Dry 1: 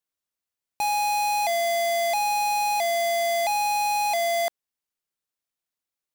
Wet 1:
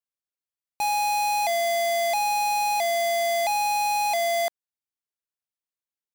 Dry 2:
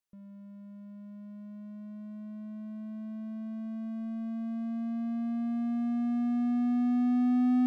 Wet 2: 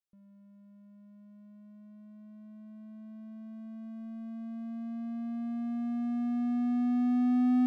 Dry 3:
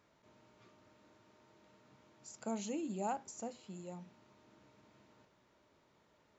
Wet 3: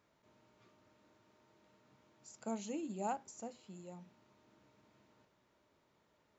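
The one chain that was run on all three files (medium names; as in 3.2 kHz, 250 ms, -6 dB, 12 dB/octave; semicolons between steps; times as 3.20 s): upward expansion 1.5:1, over -42 dBFS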